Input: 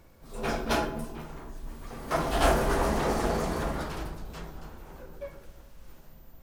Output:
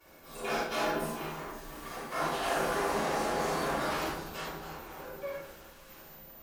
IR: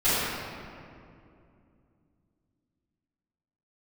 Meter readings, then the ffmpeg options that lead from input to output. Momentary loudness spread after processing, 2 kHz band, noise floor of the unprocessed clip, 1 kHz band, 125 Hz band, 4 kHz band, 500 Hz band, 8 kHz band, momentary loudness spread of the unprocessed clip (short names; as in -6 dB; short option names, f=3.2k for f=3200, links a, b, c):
18 LU, 0.0 dB, -53 dBFS, -1.5 dB, -9.5 dB, -0.5 dB, -3.0 dB, -1.0 dB, 20 LU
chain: -filter_complex "[0:a]highpass=f=670:p=1,areverse,acompressor=threshold=-37dB:ratio=5,areverse[a];[1:a]atrim=start_sample=2205,atrim=end_sample=4410,asetrate=37044,aresample=44100[b];[a][b]afir=irnorm=-1:irlink=0,volume=-6dB"